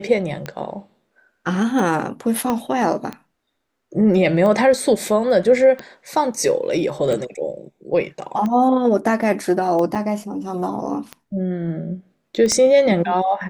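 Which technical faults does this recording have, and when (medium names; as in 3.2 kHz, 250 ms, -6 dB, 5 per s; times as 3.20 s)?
tick 45 rpm -14 dBFS
2.50 s: pop -9 dBFS
9.95–9.96 s: dropout 5.4 ms
12.52 s: pop -8 dBFS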